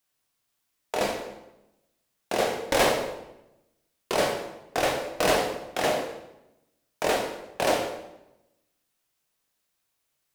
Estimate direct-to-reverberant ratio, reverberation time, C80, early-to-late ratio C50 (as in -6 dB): 1.0 dB, 0.90 s, 8.0 dB, 5.5 dB